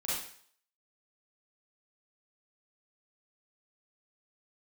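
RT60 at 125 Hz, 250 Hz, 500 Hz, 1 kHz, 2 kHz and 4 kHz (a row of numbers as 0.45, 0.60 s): 0.45, 0.45, 0.55, 0.55, 0.55, 0.55 s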